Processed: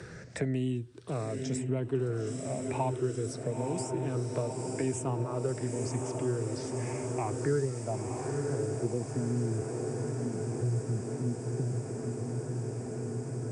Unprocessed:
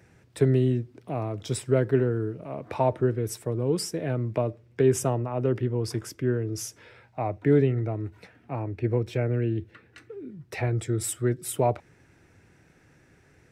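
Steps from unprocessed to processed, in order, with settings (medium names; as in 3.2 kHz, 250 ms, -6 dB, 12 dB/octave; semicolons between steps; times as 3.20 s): drifting ripple filter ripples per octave 0.61, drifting +0.93 Hz, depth 10 dB; resampled via 22.05 kHz; low-pass sweep 8.3 kHz -> 190 Hz, 5.79–9.59 s; echo that smears into a reverb 975 ms, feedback 74%, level -7.5 dB; three bands compressed up and down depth 70%; trim -8.5 dB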